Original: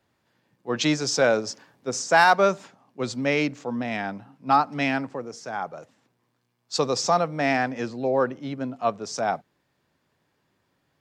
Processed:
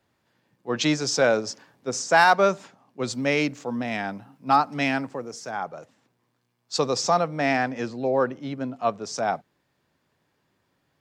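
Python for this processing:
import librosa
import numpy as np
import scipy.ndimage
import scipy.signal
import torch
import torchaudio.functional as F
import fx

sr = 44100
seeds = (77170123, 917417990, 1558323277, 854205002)

y = fx.high_shelf(x, sr, hz=8900.0, db=11.0, at=(3.07, 5.51))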